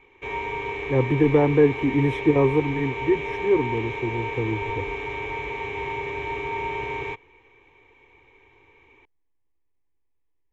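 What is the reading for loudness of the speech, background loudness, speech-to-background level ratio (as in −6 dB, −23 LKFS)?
−23.0 LKFS, −30.0 LKFS, 7.0 dB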